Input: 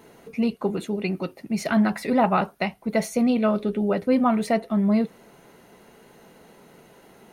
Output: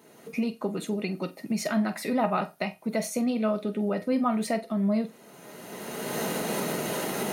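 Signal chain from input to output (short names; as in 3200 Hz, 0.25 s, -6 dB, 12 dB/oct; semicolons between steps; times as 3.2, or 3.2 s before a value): recorder AGC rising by 23 dB/s; HPF 170 Hz 12 dB/oct; tone controls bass +4 dB, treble +5 dB; resonator 620 Hz, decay 0.21 s, harmonics all, mix 70%; flutter echo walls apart 7.8 m, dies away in 0.2 s; gain +3 dB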